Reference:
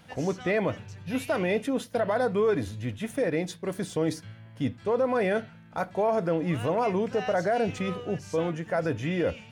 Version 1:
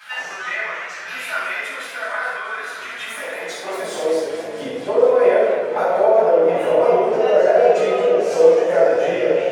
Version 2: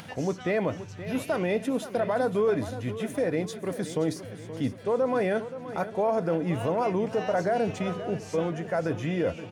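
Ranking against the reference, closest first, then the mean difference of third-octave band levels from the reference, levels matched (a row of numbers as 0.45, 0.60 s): 2, 1; 3.0, 10.0 dB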